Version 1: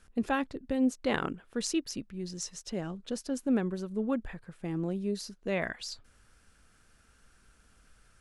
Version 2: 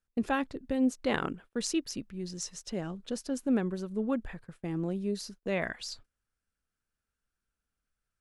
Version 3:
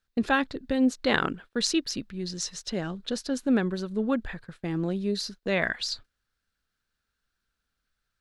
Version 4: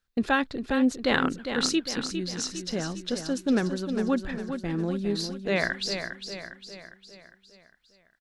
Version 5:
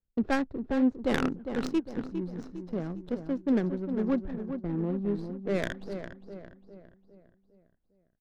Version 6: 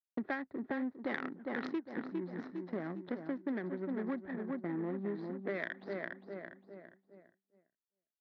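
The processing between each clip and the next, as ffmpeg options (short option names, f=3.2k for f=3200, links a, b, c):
-af "agate=range=-25dB:threshold=-49dB:ratio=16:detection=peak"
-af "equalizer=f=1.6k:t=o:w=0.67:g=5,equalizer=f=4k:t=o:w=0.67:g=9,equalizer=f=10k:t=o:w=0.67:g=-4,volume=4dB"
-af "aecho=1:1:405|810|1215|1620|2025|2430:0.398|0.199|0.0995|0.0498|0.0249|0.0124"
-filter_complex "[0:a]acrossover=split=260|710|5300[a][b][c][d];[c]aeval=exprs='max(val(0),0)':c=same[e];[a][b][e][d]amix=inputs=4:normalize=0,adynamicsmooth=sensitivity=2:basefreq=650,volume=-1.5dB"
-af "agate=range=-33dB:threshold=-54dB:ratio=3:detection=peak,highpass=290,equalizer=f=480:t=q:w=4:g=-7,equalizer=f=1.9k:t=q:w=4:g=10,equalizer=f=2.8k:t=q:w=4:g=-9,lowpass=f=3.8k:w=0.5412,lowpass=f=3.8k:w=1.3066,acompressor=threshold=-36dB:ratio=10,volume=2.5dB"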